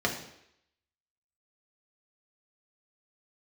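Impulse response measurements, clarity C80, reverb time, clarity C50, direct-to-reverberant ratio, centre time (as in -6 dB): 10.5 dB, 0.75 s, 8.0 dB, -0.5 dB, 21 ms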